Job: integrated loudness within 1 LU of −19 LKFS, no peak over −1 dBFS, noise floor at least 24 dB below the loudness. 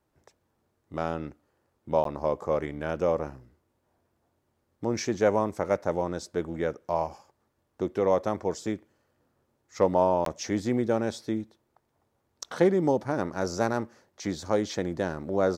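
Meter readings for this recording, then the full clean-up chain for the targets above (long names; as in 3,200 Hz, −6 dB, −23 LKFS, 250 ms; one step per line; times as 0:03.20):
number of dropouts 2; longest dropout 13 ms; integrated loudness −28.5 LKFS; sample peak −9.5 dBFS; target loudness −19.0 LKFS
→ repair the gap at 0:02.04/0:10.25, 13 ms
level +9.5 dB
brickwall limiter −1 dBFS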